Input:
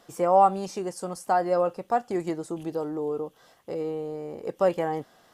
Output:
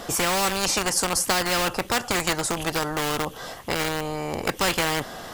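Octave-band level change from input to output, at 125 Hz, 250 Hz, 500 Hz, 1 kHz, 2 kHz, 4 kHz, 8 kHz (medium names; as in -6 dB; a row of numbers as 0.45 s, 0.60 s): +6.5 dB, +2.0 dB, -2.5 dB, -1.5 dB, +16.0 dB, +23.0 dB, +20.5 dB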